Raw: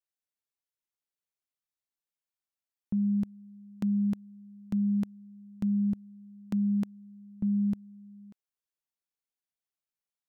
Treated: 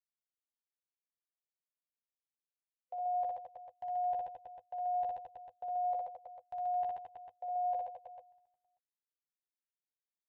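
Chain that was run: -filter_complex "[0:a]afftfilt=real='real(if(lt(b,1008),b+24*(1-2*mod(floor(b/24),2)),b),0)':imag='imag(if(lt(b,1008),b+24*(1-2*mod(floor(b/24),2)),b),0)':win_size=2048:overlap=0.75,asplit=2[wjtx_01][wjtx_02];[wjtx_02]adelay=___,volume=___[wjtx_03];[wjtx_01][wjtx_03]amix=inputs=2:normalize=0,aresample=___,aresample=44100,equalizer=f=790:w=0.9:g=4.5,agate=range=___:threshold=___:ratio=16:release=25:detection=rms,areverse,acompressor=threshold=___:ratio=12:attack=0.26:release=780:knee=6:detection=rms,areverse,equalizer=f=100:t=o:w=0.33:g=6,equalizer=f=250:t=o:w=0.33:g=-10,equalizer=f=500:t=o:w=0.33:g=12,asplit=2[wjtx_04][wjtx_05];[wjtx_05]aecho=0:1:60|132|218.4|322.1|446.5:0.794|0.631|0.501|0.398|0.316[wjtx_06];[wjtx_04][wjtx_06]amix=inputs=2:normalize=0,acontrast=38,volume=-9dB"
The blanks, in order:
12, -8dB, 8000, -21dB, -43dB, -36dB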